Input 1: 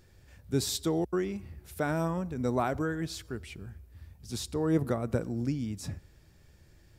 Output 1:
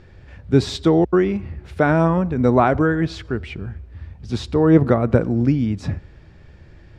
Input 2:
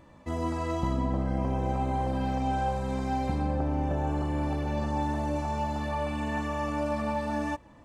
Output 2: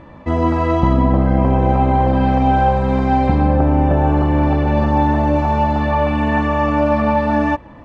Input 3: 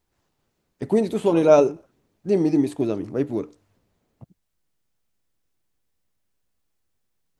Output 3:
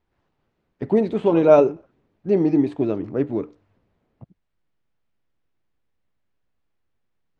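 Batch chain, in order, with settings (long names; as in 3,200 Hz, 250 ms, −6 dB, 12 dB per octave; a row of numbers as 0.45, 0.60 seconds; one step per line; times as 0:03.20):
low-pass filter 2,800 Hz 12 dB per octave
normalise the peak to −1.5 dBFS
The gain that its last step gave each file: +14.0, +14.5, +1.5 decibels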